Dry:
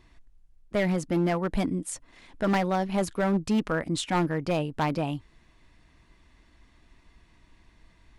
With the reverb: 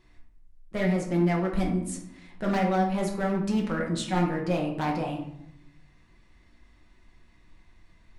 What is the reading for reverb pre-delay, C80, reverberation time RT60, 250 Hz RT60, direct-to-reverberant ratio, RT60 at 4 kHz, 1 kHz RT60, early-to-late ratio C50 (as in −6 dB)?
5 ms, 9.0 dB, 0.80 s, 1.1 s, −1.5 dB, 0.45 s, 0.75 s, 6.0 dB